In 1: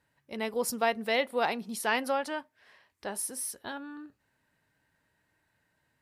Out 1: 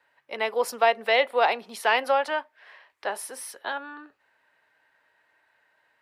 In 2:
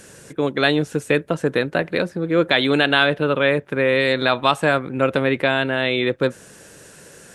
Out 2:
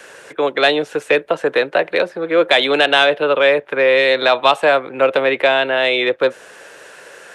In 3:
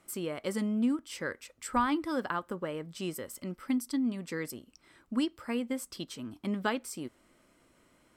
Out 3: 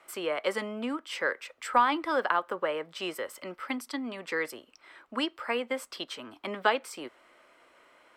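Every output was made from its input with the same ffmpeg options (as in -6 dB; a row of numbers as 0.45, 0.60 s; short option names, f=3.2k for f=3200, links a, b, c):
-filter_complex "[0:a]acrossover=split=400|1000|2100[a][b][c][d];[c]acompressor=threshold=-40dB:ratio=6[e];[a][b][e][d]amix=inputs=4:normalize=0,acrossover=split=450 3700:gain=0.0631 1 0.2[f][g][h];[f][g][h]amix=inputs=3:normalize=0,acontrast=82,volume=3dB"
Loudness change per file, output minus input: +6.0, +4.0, +2.5 LU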